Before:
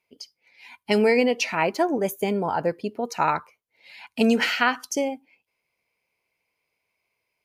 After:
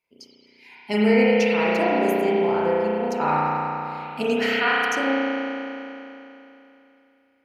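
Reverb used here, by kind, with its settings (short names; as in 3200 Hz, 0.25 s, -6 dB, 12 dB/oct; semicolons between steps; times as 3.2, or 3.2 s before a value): spring tank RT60 3.1 s, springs 33 ms, chirp 75 ms, DRR -8 dB; gain -6 dB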